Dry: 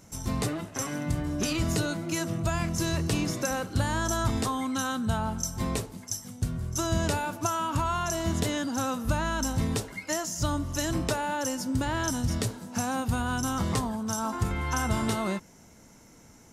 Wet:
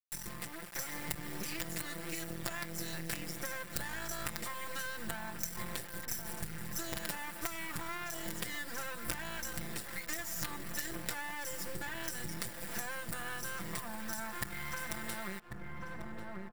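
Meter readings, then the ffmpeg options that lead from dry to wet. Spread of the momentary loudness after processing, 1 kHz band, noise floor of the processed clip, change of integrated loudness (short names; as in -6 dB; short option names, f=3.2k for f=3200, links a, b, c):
3 LU, -13.0 dB, -46 dBFS, -10.5 dB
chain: -filter_complex "[0:a]acrusher=bits=4:dc=4:mix=0:aa=0.000001,equalizer=f=1.8k:w=1.9:g=12,aecho=1:1:5.8:0.94,asplit=2[a][b];[b]adelay=1092,lowpass=f=820:p=1,volume=-12dB,asplit=2[c][d];[d]adelay=1092,lowpass=f=820:p=1,volume=0.55,asplit=2[e][f];[f]adelay=1092,lowpass=f=820:p=1,volume=0.55,asplit=2[g][h];[h]adelay=1092,lowpass=f=820:p=1,volume=0.55,asplit=2[i][j];[j]adelay=1092,lowpass=f=820:p=1,volume=0.55,asplit=2[k][l];[l]adelay=1092,lowpass=f=820:p=1,volume=0.55[m];[a][c][e][g][i][k][m]amix=inputs=7:normalize=0,acompressor=threshold=-37dB:ratio=6,aeval=exprs='sgn(val(0))*max(abs(val(0))-0.00316,0)':c=same,highshelf=f=6.9k:g=12,dynaudnorm=f=250:g=5:m=4.5dB,bandreject=f=6.4k:w=9,volume=-4dB"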